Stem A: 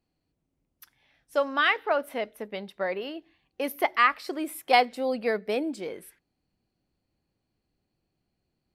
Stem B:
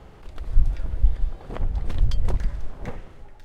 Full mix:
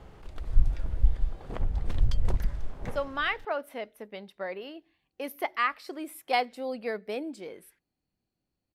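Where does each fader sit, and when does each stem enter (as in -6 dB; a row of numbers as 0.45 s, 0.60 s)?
-6.0 dB, -3.5 dB; 1.60 s, 0.00 s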